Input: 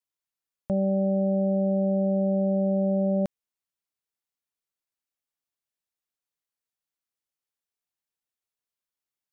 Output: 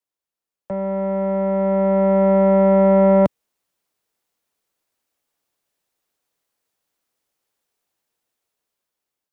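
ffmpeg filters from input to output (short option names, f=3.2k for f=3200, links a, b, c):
-filter_complex "[0:a]equalizer=f=490:t=o:w=2.3:g=6.5,acrossover=split=110|240|410[a][b][c][d];[c]alimiter=level_in=10dB:limit=-24dB:level=0:latency=1,volume=-10dB[e];[a][b][e][d]amix=inputs=4:normalize=0,asoftclip=type=tanh:threshold=-20dB,dynaudnorm=f=770:g=5:m=12dB"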